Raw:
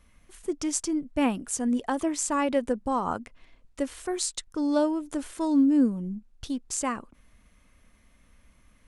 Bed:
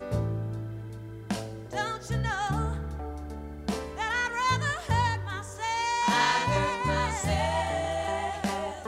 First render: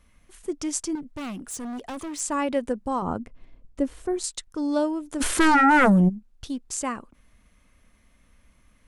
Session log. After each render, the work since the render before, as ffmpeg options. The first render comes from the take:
-filter_complex "[0:a]asettb=1/sr,asplit=3[a][b][c];[a]atrim=end=0.954[d];[b]atrim=start=0.95:end=2.2,asetpts=PTS-STARTPTS,afade=t=in:d=0.004:c=qsin,afade=t=out:st=1.246:d=0.004:c=qsin,volume=31.5dB,asoftclip=hard,volume=-31.5dB[e];[c]atrim=start=2.196[f];[d][e]acrossfade=d=0.004:c1=hsin:c2=qsin[g];[g][f]acrossfade=d=0.004:c1=qsin:c2=hsin,asettb=1/sr,asplit=3[h][i][j];[h]atrim=end=3.024[k];[i]atrim=start=3.02:end=4.24,asetpts=PTS-STARTPTS,afade=t=in:d=0.004:c=qsin,afade=t=out:st=1.216:d=0.004:c=qsin,tiltshelf=f=740:g=7.5[l];[j]atrim=start=4.236[m];[k][l]acrossfade=d=0.004:c1=hsin:c2=qsin[n];[n][m]acrossfade=d=0.004:c1=qsin:c2=hsin,asplit=3[o][p][q];[o]afade=t=out:st=5.2:d=0.02[r];[p]aeval=exprs='0.211*sin(PI/2*5.01*val(0)/0.211)':c=same,afade=t=in:st=5.2:d=0.02,afade=t=out:st=6.08:d=0.02[s];[q]afade=t=in:st=6.08:d=0.02[t];[r][s][t]amix=inputs=3:normalize=0"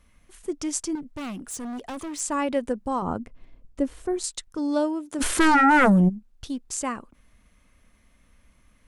-filter_complex "[0:a]asettb=1/sr,asplit=3[a][b][c];[a]atrim=end=4.584[d];[b]atrim=start=4.58:end=5.19,asetpts=PTS-STARTPTS,afade=t=in:d=0.004:c=qsin,afade=t=out:st=0.606:d=0.004:c=qsin,highpass=96[e];[c]atrim=start=5.186[f];[d][e]acrossfade=d=0.004:c1=hsin:c2=qsin[g];[g][f]acrossfade=d=0.004:c1=qsin:c2=hsin"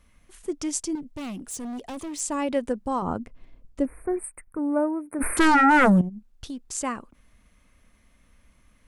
-filter_complex "[0:a]asettb=1/sr,asplit=3[a][b][c];[a]atrim=end=0.714[d];[b]atrim=start=0.71:end=2.51,asetpts=PTS-STARTPTS,afade=t=in:d=0.004:c=qsin,afade=t=out:st=1.796:d=0.004:c=qsin,equalizer=f=1.4k:t=o:w=0.99:g=-6[e];[c]atrim=start=2.506[f];[d][e]acrossfade=d=0.004:c1=hsin:c2=qsin[g];[g][f]acrossfade=d=0.004:c1=qsin:c2=hsin,asettb=1/sr,asplit=3[h][i][j];[h]atrim=end=3.854[k];[i]atrim=start=3.85:end=5.37,asetpts=PTS-STARTPTS,afade=t=in:d=0.004:c=qsin,afade=t=out:st=1.516:d=0.004:c=qsin,asuperstop=centerf=4700:order=20:qfactor=0.77[l];[j]atrim=start=5.366[m];[k][l]acrossfade=d=0.004:c1=hsin:c2=qsin[n];[n][m]acrossfade=d=0.004:c1=qsin:c2=hsin,asettb=1/sr,asplit=3[o][p][q];[o]atrim=end=6.014[r];[p]atrim=start=6.01:end=6.75,asetpts=PTS-STARTPTS,afade=t=in:d=0.004:c=qsin,afade=t=out:st=0.736:d=0.004:c=qsin,acompressor=threshold=-31dB:ratio=4:attack=3.2:release=140:knee=1:detection=peak[s];[q]atrim=start=6.746[t];[r][s]acrossfade=d=0.004:c1=hsin:c2=qsin[u];[u][t]acrossfade=d=0.004:c1=qsin:c2=hsin"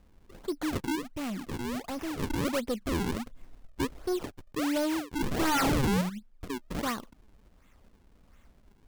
-af "acrusher=samples=41:mix=1:aa=0.000001:lfo=1:lforange=65.6:lforate=1.4,asoftclip=type=tanh:threshold=-24.5dB"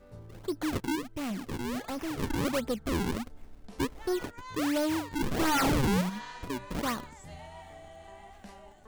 -filter_complex "[1:a]volume=-19.5dB[a];[0:a][a]amix=inputs=2:normalize=0"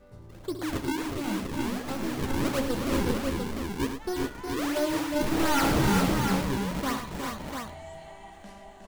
-filter_complex "[0:a]asplit=2[a][b];[b]adelay=15,volume=-11dB[c];[a][c]amix=inputs=2:normalize=0,aecho=1:1:67|108|363|400|644|695:0.299|0.355|0.473|0.531|0.15|0.531"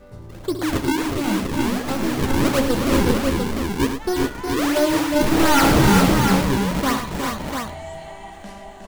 -af "volume=9dB"

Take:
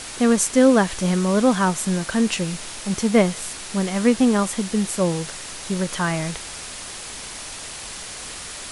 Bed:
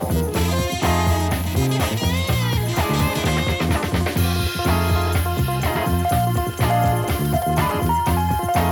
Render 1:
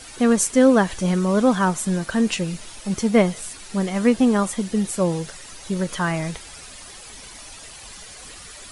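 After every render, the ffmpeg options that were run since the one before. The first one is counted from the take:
-af "afftdn=nr=10:nf=-35"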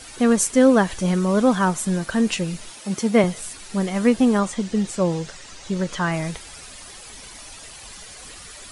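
-filter_complex "[0:a]asettb=1/sr,asplit=3[a][b][c];[a]atrim=end=2.714[d];[b]atrim=start=2.71:end=3.24,asetpts=PTS-STARTPTS,afade=t=in:d=0.004:c=qsin,afade=t=out:st=0.526:d=0.004:c=qsin,highpass=150[e];[c]atrim=start=3.236[f];[d][e]acrossfade=d=0.004:c1=hsin:c2=qsin[g];[g][f]acrossfade=d=0.004:c1=qsin:c2=hsin,asettb=1/sr,asplit=3[h][i][j];[h]atrim=end=4.394[k];[i]atrim=start=4.39:end=6.12,asetpts=PTS-STARTPTS,afade=t=in:d=0.004:c=qsin,afade=t=out:st=1.726:d=0.004:c=qsin,lowpass=f=8k:w=0.5412,lowpass=f=8k:w=1.3066[l];[j]atrim=start=6.116[m];[k][l]acrossfade=d=0.004:c1=hsin:c2=qsin[n];[n][m]acrossfade=d=0.004:c1=qsin:c2=hsin"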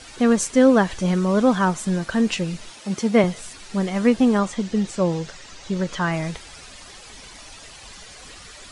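-af "lowpass=7k"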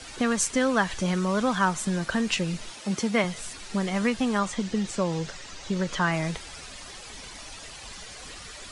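-filter_complex "[0:a]acrossover=split=150|870[a][b][c];[a]alimiter=level_in=9dB:limit=-24dB:level=0:latency=1,volume=-9dB[d];[b]acompressor=threshold=-26dB:ratio=6[e];[d][e][c]amix=inputs=3:normalize=0"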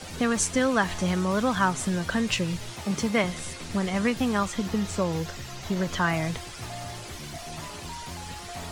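-filter_complex "[1:a]volume=-20.5dB[a];[0:a][a]amix=inputs=2:normalize=0"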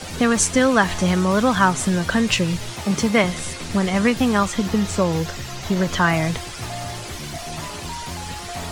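-af "volume=7dB"

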